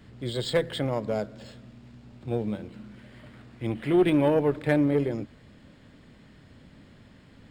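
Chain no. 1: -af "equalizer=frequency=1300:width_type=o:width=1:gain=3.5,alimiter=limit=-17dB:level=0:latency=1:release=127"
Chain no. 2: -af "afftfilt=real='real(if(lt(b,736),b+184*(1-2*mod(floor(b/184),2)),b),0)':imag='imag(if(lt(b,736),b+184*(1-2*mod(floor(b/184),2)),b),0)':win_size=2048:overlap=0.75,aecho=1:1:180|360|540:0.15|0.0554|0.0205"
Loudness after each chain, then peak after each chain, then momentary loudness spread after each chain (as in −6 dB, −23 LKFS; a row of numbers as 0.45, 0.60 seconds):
−29.0, −22.5 LKFS; −17.0, −9.5 dBFS; 21, 19 LU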